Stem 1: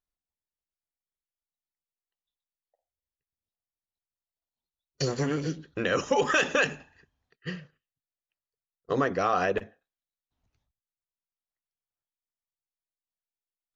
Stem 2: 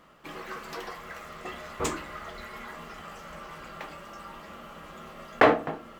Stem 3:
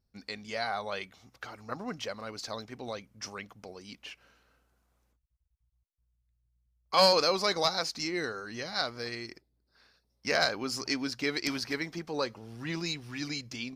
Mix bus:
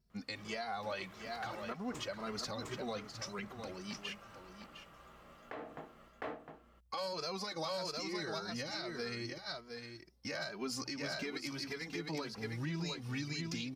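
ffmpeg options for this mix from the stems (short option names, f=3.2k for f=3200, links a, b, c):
-filter_complex "[1:a]aeval=exprs='val(0)+0.00178*(sin(2*PI*60*n/s)+sin(2*PI*2*60*n/s)/2+sin(2*PI*3*60*n/s)/3+sin(2*PI*4*60*n/s)/4+sin(2*PI*5*60*n/s)/5)':c=same,adelay=100,volume=-15dB,asplit=2[a][b];[b]volume=-4.5dB[c];[2:a]equalizer=f=160:t=o:w=0.91:g=5.5,asplit=2[d][e];[e]adelay=2.6,afreqshift=1.8[f];[d][f]amix=inputs=2:normalize=1,volume=3dB,asplit=2[g][h];[h]volume=-11dB[i];[a][g]amix=inputs=2:normalize=0,acompressor=threshold=-34dB:ratio=6,volume=0dB[j];[c][i]amix=inputs=2:normalize=0,aecho=0:1:707:1[k];[j][k]amix=inputs=2:normalize=0,alimiter=level_in=5.5dB:limit=-24dB:level=0:latency=1:release=232,volume=-5.5dB"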